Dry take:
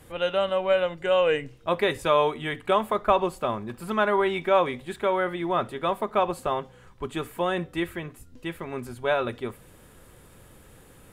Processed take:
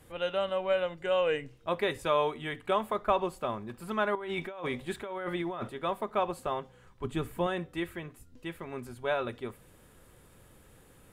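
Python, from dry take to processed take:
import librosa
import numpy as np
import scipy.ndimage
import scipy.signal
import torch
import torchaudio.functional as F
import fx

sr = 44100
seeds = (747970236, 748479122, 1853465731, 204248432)

y = fx.over_compress(x, sr, threshold_db=-30.0, ratio=-1.0, at=(4.15, 5.69))
y = fx.low_shelf(y, sr, hz=240.0, db=12.0, at=(7.04, 7.47))
y = y * librosa.db_to_amplitude(-6.0)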